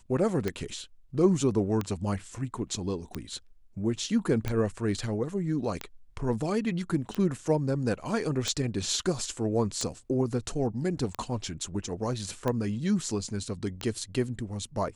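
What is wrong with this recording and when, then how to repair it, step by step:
tick 45 rpm -16 dBFS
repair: de-click

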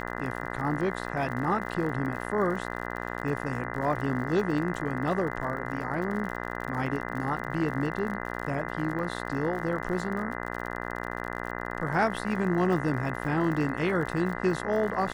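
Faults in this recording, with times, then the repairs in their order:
buzz 60 Hz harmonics 34 -35 dBFS
crackle 60/s -36 dBFS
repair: de-click; de-hum 60 Hz, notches 34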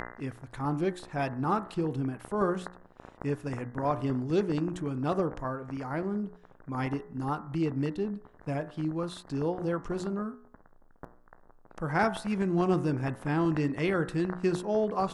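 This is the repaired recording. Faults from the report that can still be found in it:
none

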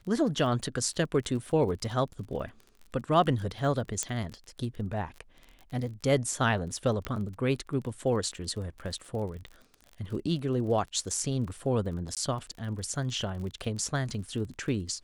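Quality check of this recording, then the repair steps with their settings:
crackle 31/s -38 dBFS
4.03 pop -15 dBFS
7.05 pop -18 dBFS
12.15–12.17 gap 17 ms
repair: de-click; interpolate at 12.15, 17 ms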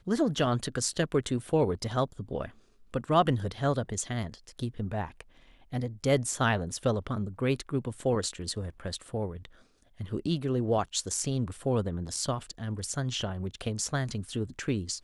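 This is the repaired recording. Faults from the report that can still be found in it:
4.03 pop

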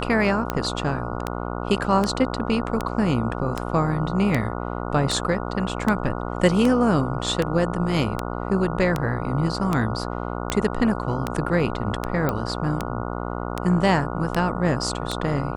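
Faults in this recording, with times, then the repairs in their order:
buzz 60 Hz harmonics 24 -29 dBFS
tick 78 rpm -9 dBFS
12.29 pop -10 dBFS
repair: de-click; de-hum 60 Hz, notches 24

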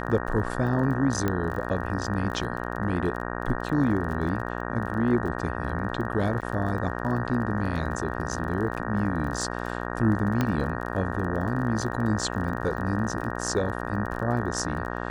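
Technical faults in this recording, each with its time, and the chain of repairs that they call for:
buzz 60 Hz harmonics 31 -32 dBFS
crackle 31/s -34 dBFS
1.28 pop -13 dBFS
6.41–6.42 gap 8.1 ms
10.41 pop -11 dBFS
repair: de-click; de-hum 60 Hz, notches 31; interpolate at 6.41, 8.1 ms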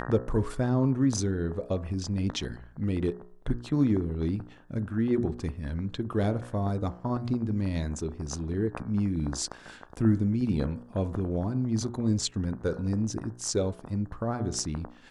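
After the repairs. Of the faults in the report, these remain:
none

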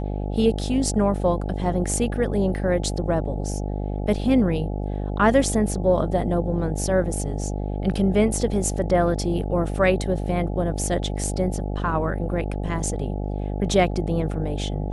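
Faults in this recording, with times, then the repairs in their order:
buzz 50 Hz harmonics 17 -27 dBFS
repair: de-hum 50 Hz, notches 17

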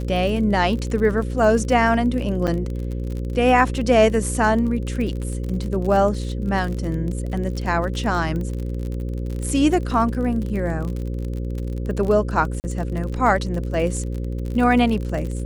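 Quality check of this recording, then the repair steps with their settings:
buzz 60 Hz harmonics 9 -26 dBFS
crackle 33/s -27 dBFS
2.47–2.48 gap 6.8 ms
12.6–12.64 gap 39 ms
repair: de-click; de-hum 60 Hz, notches 9; interpolate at 2.47, 6.8 ms; interpolate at 12.6, 39 ms

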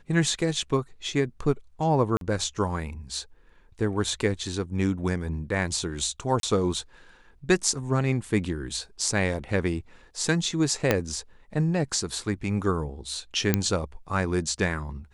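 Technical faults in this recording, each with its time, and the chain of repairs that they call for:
2.17–2.21 gap 42 ms
6.4–6.43 gap 32 ms
10.91 pop -6 dBFS
13.54 pop -6 dBFS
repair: de-click; interpolate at 2.17, 42 ms; interpolate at 6.4, 32 ms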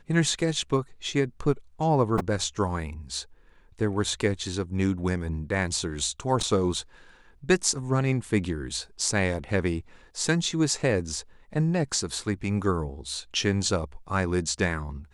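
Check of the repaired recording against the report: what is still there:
10.91 pop

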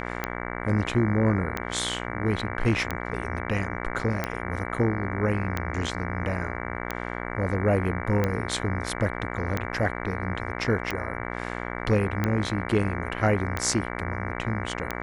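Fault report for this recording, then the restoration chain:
buzz 60 Hz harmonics 38 -33 dBFS
tick 45 rpm -12 dBFS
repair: de-click; de-hum 60 Hz, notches 38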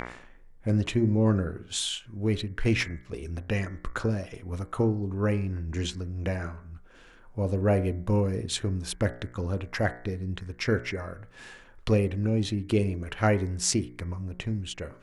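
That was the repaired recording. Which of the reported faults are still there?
none

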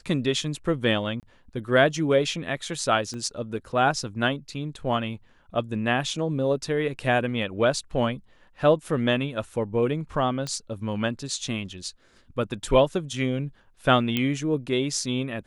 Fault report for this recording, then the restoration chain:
1.2–1.23 gap 28 ms
3.14 pop -24 dBFS
10.47 pop -18 dBFS
14.17 pop -11 dBFS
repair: de-click; interpolate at 1.2, 28 ms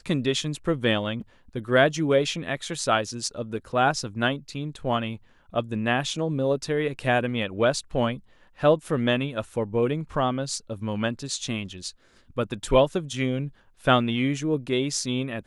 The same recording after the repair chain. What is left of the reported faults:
3.14 pop

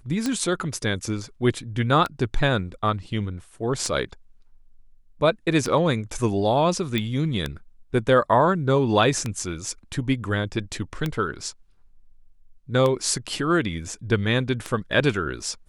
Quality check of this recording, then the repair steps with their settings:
tick 33 1/3 rpm -12 dBFS
6.98 pop -12 dBFS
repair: de-click

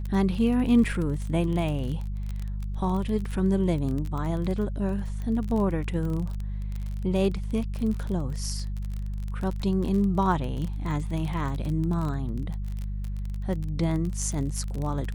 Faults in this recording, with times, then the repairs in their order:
crackle 27/s -30 dBFS
hum 50 Hz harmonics 4 -31 dBFS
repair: de-click; de-hum 50 Hz, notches 4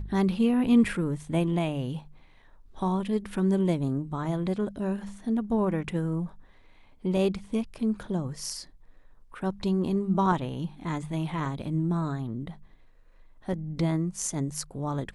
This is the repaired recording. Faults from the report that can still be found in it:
none

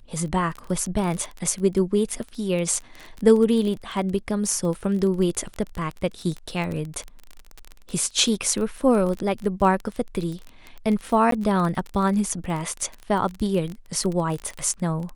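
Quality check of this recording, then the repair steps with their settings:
crackle 24/s -27 dBFS
11.31–11.32 gap 13 ms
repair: de-click; interpolate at 11.31, 13 ms

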